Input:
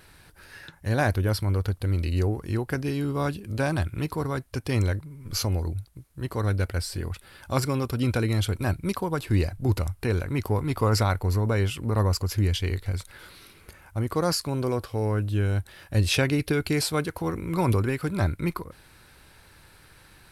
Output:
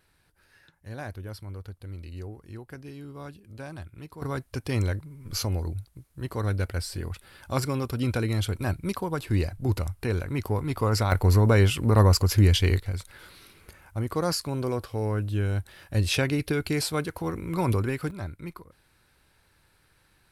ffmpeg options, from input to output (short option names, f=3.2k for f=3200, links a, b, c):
-af "asetnsamples=n=441:p=0,asendcmd='4.22 volume volume -2dB;11.12 volume volume 5dB;12.8 volume volume -2dB;18.11 volume volume -11dB',volume=-14dB"